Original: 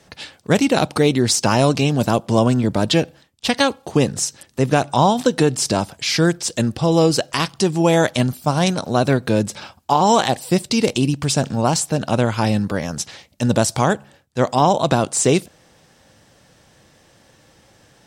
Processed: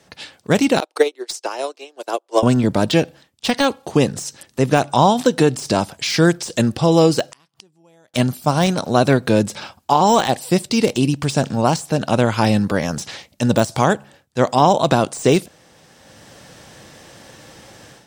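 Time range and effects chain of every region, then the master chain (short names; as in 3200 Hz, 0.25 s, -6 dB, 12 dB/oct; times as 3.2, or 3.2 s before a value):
0.8–2.43 steep high-pass 340 Hz 48 dB/oct + transient shaper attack +7 dB, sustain -1 dB + upward expander 2.5:1, over -27 dBFS
7.31–8.14 high shelf 12000 Hz +9.5 dB + flipped gate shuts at -22 dBFS, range -39 dB
whole clip: AGC; low shelf 72 Hz -8.5 dB; de-esser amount 40%; gain -1 dB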